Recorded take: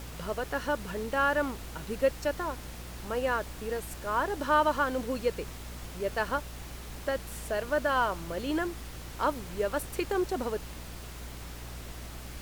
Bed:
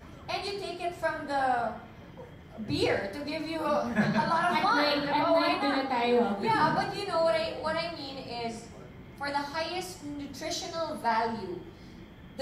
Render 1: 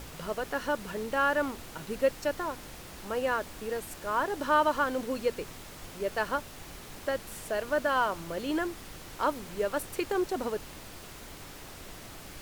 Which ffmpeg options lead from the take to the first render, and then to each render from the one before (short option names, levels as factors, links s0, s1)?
-af "bandreject=f=60:t=h:w=4,bandreject=f=120:t=h:w=4,bandreject=f=180:t=h:w=4,bandreject=f=240:t=h:w=4"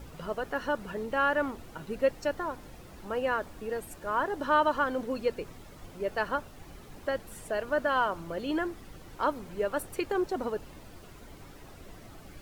-af "afftdn=nr=10:nf=-46"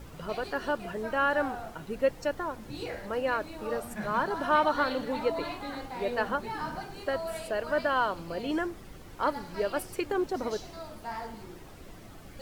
-filter_complex "[1:a]volume=0.299[s0];[0:a][s0]amix=inputs=2:normalize=0"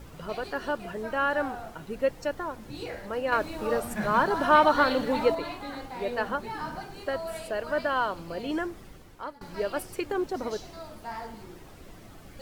-filter_complex "[0:a]asettb=1/sr,asplit=3[s0][s1][s2];[s0]atrim=end=3.324[s3];[s1]atrim=start=3.32:end=5.35,asetpts=PTS-STARTPTS,afade=t=in:d=0.004:c=qsin,afade=t=out:st=2.026:d=0.004:c=qsin,acontrast=32[s4];[s2]atrim=start=5.346[s5];[s3][s4]acrossfade=d=0.004:c1=hsin:c2=qsin[s6];[s6][s5]acrossfade=d=0.004:c1=qsin:c2=hsin,asplit=2[s7][s8];[s7]atrim=end=9.41,asetpts=PTS-STARTPTS,afade=t=out:st=8.84:d=0.57:silence=0.0891251[s9];[s8]atrim=start=9.41,asetpts=PTS-STARTPTS,afade=t=in:d=0.004:c=hsin:silence=0.0891251[s10];[s9][s10]concat=n=2:v=0:a=1"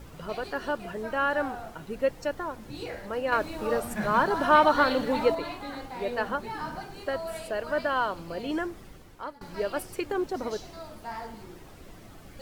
-af anull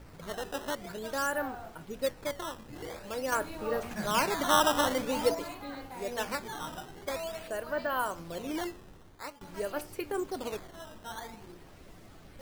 -af "flanger=delay=9.9:depth=2.6:regen=80:speed=0.2:shape=triangular,acrusher=samples=11:mix=1:aa=0.000001:lfo=1:lforange=17.6:lforate=0.48"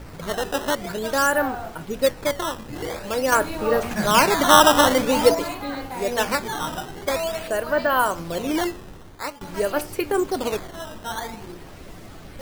-af "volume=3.76"